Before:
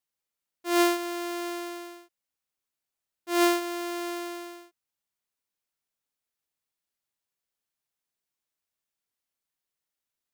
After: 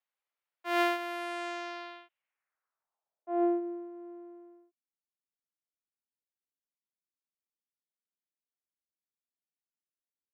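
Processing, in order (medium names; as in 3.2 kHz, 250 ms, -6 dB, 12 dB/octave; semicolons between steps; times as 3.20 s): in parallel at -8.5 dB: hard clipper -22.5 dBFS, distortion -11 dB; on the sum: low-pass sweep 15 kHz -> 240 Hz, 0.99–3.91 s; dynamic bell 1.1 kHz, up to -4 dB, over -39 dBFS, Q 2.2; elliptic high-pass 160 Hz; three-band isolator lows -20 dB, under 500 Hz, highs -20 dB, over 3.2 kHz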